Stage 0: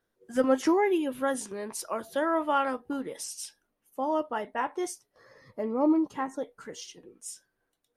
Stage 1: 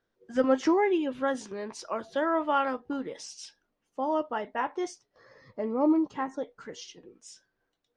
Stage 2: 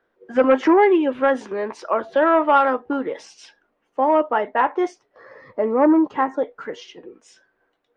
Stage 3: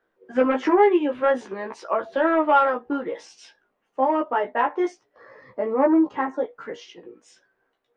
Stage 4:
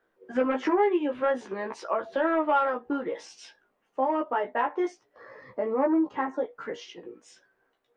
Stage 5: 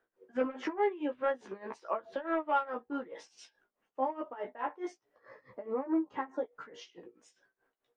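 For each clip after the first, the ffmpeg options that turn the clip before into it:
ffmpeg -i in.wav -af "lowpass=frequency=6100:width=0.5412,lowpass=frequency=6100:width=1.3066" out.wav
ffmpeg -i in.wav -filter_complex "[0:a]aeval=exprs='0.237*sin(PI/2*1.58*val(0)/0.237)':channel_layout=same,acrossover=split=280 2700:gain=0.251 1 0.126[link_01][link_02][link_03];[link_01][link_02][link_03]amix=inputs=3:normalize=0,volume=5dB" out.wav
ffmpeg -i in.wav -af "flanger=delay=15:depth=2.2:speed=0.51" out.wav
ffmpeg -i in.wav -af "acompressor=threshold=-31dB:ratio=1.5" out.wav
ffmpeg -i in.wav -af "tremolo=f=4.7:d=0.88,volume=-4.5dB" out.wav

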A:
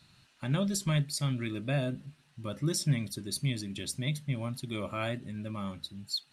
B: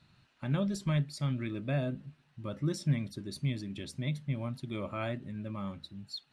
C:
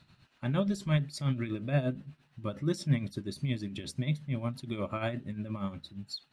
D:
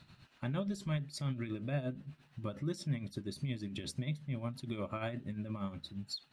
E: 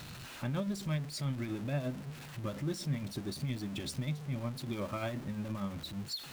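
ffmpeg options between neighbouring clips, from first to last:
ffmpeg -i in.wav -af "aemphasis=mode=reproduction:type=75kf,volume=-1dB" out.wav
ffmpeg -i in.wav -af "tremolo=f=8.5:d=0.64,volume=5dB" out.wav
ffmpeg -i in.wav -af "acompressor=threshold=-42dB:ratio=2,volume=2dB" out.wav
ffmpeg -i in.wav -af "aeval=exprs='val(0)+0.5*0.0075*sgn(val(0))':channel_layout=same" out.wav

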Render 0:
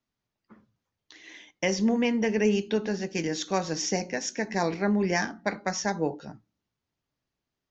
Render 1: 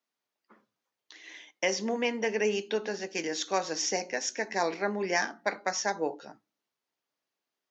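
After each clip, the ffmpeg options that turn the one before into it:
ffmpeg -i in.wav -af "highpass=400" out.wav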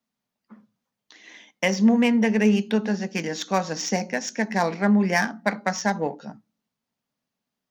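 ffmpeg -i in.wav -filter_complex "[0:a]lowshelf=frequency=270:width_type=q:width=3:gain=6.5,asplit=2[link_01][link_02];[link_02]adynamicsmooth=sensitivity=5:basefreq=1100,volume=-1.5dB[link_03];[link_01][link_03]amix=inputs=2:normalize=0,volume=1.5dB" out.wav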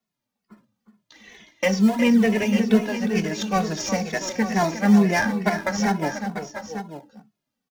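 ffmpeg -i in.wav -filter_complex "[0:a]asplit=2[link_01][link_02];[link_02]acrusher=samples=27:mix=1:aa=0.000001:lfo=1:lforange=27:lforate=2.3,volume=-12dB[link_03];[link_01][link_03]amix=inputs=2:normalize=0,aecho=1:1:361|690|896:0.316|0.237|0.266,asplit=2[link_04][link_05];[link_05]adelay=2.3,afreqshift=-2.2[link_06];[link_04][link_06]amix=inputs=2:normalize=1,volume=2.5dB" out.wav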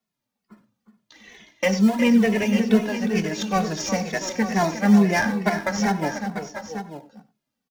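ffmpeg -i in.wav -filter_complex "[0:a]asplit=2[link_01][link_02];[link_02]adelay=93.29,volume=-17dB,highshelf=frequency=4000:gain=-2.1[link_03];[link_01][link_03]amix=inputs=2:normalize=0" out.wav

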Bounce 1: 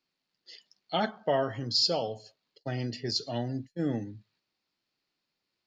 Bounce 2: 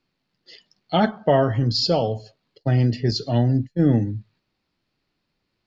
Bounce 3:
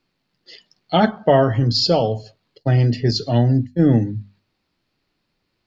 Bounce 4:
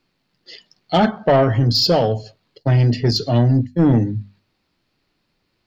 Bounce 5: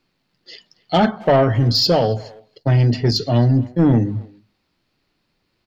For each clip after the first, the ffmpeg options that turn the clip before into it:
ffmpeg -i in.wav -af "aemphasis=mode=reproduction:type=bsi,volume=8dB" out.wav
ffmpeg -i in.wav -af "bandreject=frequency=50:width_type=h:width=6,bandreject=frequency=100:width_type=h:width=6,bandreject=frequency=150:width_type=h:width=6,bandreject=frequency=200:width_type=h:width=6,bandreject=frequency=250:width_type=h:width=6,volume=3.5dB" out.wav
ffmpeg -i in.wav -af "asoftclip=type=tanh:threshold=-10.5dB,volume=3dB" out.wav
ffmpeg -i in.wav -filter_complex "[0:a]asplit=2[link_01][link_02];[link_02]adelay=270,highpass=300,lowpass=3400,asoftclip=type=hard:threshold=-17.5dB,volume=-20dB[link_03];[link_01][link_03]amix=inputs=2:normalize=0" out.wav

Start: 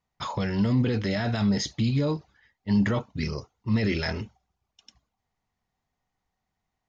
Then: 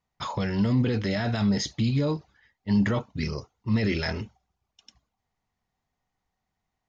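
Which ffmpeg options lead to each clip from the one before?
ffmpeg -i in.wav -af anull out.wav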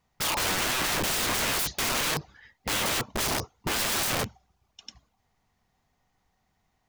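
ffmpeg -i in.wav -af "aeval=exprs='(mod(35.5*val(0)+1,2)-1)/35.5':channel_layout=same,volume=8.5dB" out.wav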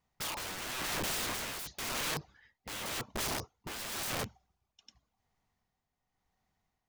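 ffmpeg -i in.wav -af "tremolo=f=0.93:d=0.55,volume=-7dB" out.wav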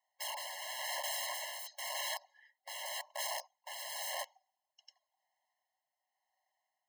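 ffmpeg -i in.wav -af "afftfilt=real='re*eq(mod(floor(b*sr/1024/550),2),1)':imag='im*eq(mod(floor(b*sr/1024/550),2),1)':win_size=1024:overlap=0.75" out.wav

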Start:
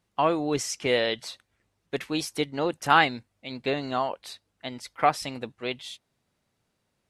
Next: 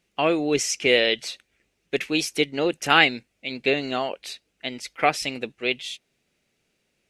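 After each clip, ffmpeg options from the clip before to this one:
ffmpeg -i in.wav -af "equalizer=frequency=100:width_type=o:width=0.67:gain=-9,equalizer=frequency=400:width_type=o:width=0.67:gain=4,equalizer=frequency=1000:width_type=o:width=0.67:gain=-8,equalizer=frequency=2500:width_type=o:width=0.67:gain=9,equalizer=frequency=6300:width_type=o:width=0.67:gain=4,volume=2.5dB" out.wav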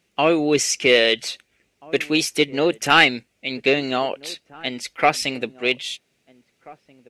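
ffmpeg -i in.wav -filter_complex "[0:a]highpass=57,acontrast=33,asplit=2[link_01][link_02];[link_02]adelay=1633,volume=-22dB,highshelf=frequency=4000:gain=-36.7[link_03];[link_01][link_03]amix=inputs=2:normalize=0,volume=-1dB" out.wav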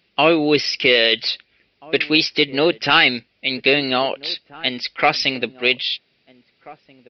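ffmpeg -i in.wav -af "highshelf=frequency=3400:gain=11,alimiter=limit=-4.5dB:level=0:latency=1:release=21,aresample=11025,aresample=44100,volume=2dB" out.wav

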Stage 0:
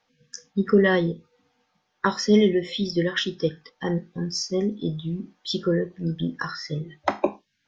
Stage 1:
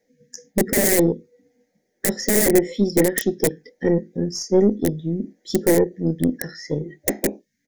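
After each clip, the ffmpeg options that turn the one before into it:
ffmpeg -i in.wav -af "aeval=exprs='(mod(5.96*val(0)+1,2)-1)/5.96':channel_layout=same,firequalizer=gain_entry='entry(130,0);entry(230,10);entry(510,11);entry(1100,-27);entry(1900,5);entry(2700,-14);entry(6800,6);entry(9900,10)':delay=0.05:min_phase=1,aeval=exprs='1*(cos(1*acos(clip(val(0)/1,-1,1)))-cos(1*PI/2))+0.0501*(cos(6*acos(clip(val(0)/1,-1,1)))-cos(6*PI/2))':channel_layout=same,volume=-1dB" out.wav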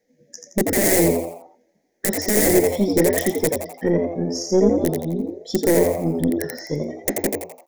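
ffmpeg -i in.wav -filter_complex "[0:a]asplit=6[link_01][link_02][link_03][link_04][link_05][link_06];[link_02]adelay=85,afreqshift=84,volume=-4dB[link_07];[link_03]adelay=170,afreqshift=168,volume=-11.7dB[link_08];[link_04]adelay=255,afreqshift=252,volume=-19.5dB[link_09];[link_05]adelay=340,afreqshift=336,volume=-27.2dB[link_10];[link_06]adelay=425,afreqshift=420,volume=-35dB[link_11];[link_01][link_07][link_08][link_09][link_10][link_11]amix=inputs=6:normalize=0,volume=-1dB" out.wav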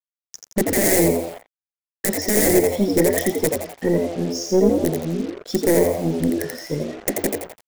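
ffmpeg -i in.wav -af "acrusher=bits=5:mix=0:aa=0.5" out.wav

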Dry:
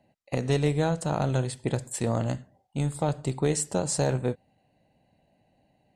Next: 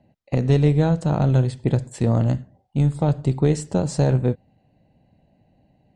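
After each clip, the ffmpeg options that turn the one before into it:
ffmpeg -i in.wav -af "lowpass=6000,lowshelf=frequency=370:gain=11" out.wav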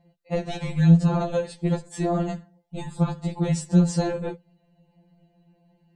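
ffmpeg -i in.wav -af "afftfilt=real='re*2.83*eq(mod(b,8),0)':imag='im*2.83*eq(mod(b,8),0)':win_size=2048:overlap=0.75,volume=2dB" out.wav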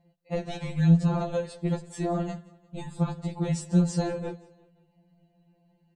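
ffmpeg -i in.wav -af "aecho=1:1:175|350|525:0.0891|0.0419|0.0197,volume=-4dB" out.wav

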